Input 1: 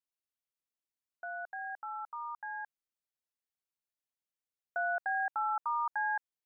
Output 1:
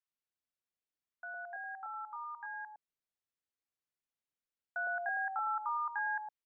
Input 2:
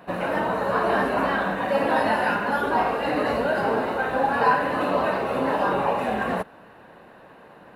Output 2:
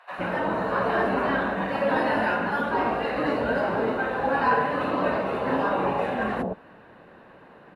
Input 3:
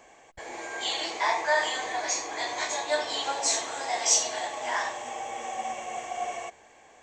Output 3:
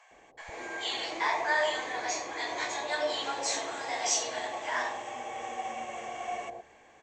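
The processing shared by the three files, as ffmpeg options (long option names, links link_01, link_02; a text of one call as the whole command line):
ffmpeg -i in.wav -filter_complex "[0:a]aemphasis=mode=reproduction:type=50kf,acrossover=split=760[link_01][link_02];[link_01]adelay=110[link_03];[link_03][link_02]amix=inputs=2:normalize=0" out.wav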